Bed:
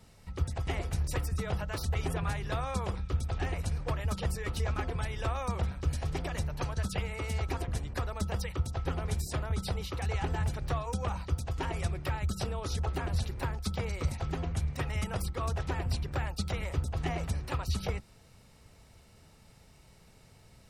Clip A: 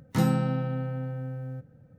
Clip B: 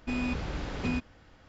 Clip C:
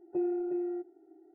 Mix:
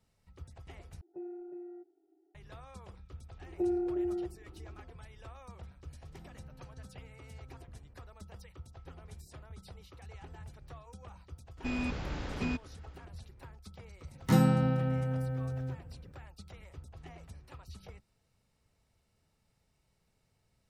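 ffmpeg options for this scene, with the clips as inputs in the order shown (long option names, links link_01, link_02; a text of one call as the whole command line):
ffmpeg -i bed.wav -i cue0.wav -i cue1.wav -i cue2.wav -filter_complex "[3:a]asplit=2[link_01][link_02];[1:a]asplit=2[link_03][link_04];[0:a]volume=-17dB[link_05];[link_03]acompressor=threshold=-42dB:ratio=6:attack=3.2:release=140:knee=1:detection=peak[link_06];[link_05]asplit=2[link_07][link_08];[link_07]atrim=end=1.014[link_09];[link_01]atrim=end=1.34,asetpts=PTS-STARTPTS,volume=-12.5dB[link_10];[link_08]atrim=start=2.346[link_11];[link_02]atrim=end=1.34,asetpts=PTS-STARTPTS,afade=type=in:duration=0.004:curve=hsin,afade=type=out:start_time=1.336:duration=0.004:curve=hsin,adelay=152145S[link_12];[link_06]atrim=end=1.98,asetpts=PTS-STARTPTS,volume=-13.5dB,afade=type=in:duration=0.004:curve=hsin,afade=type=out:start_time=1.976:duration=0.004:curve=hsin,adelay=6010[link_13];[2:a]atrim=end=1.48,asetpts=PTS-STARTPTS,volume=-3dB,afade=type=in:duration=0.004:curve=hsin,afade=type=out:start_time=1.476:duration=0.004:curve=hsin,adelay=11570[link_14];[link_04]atrim=end=1.98,asetpts=PTS-STARTPTS,volume=-0.5dB,afade=type=in:duration=0.004:curve=hsin,afade=type=out:start_time=1.976:duration=0.004:curve=hsin,adelay=14140[link_15];[link_09][link_10]acrossfade=duration=0.004:curve1=hsin:curve2=hsin[link_16];[link_16][link_11]acrossfade=duration=0.004:curve1=hsin:curve2=hsin[link_17];[link_17][link_12][link_13][link_14][link_15]amix=inputs=5:normalize=0" out.wav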